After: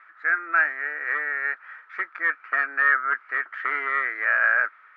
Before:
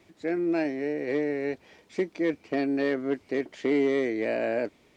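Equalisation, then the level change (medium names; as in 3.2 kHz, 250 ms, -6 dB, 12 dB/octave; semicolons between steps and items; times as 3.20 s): resonant high-pass 1.3 kHz, resonance Q 11; resonant low-pass 1.7 kHz, resonance Q 4.7; 0.0 dB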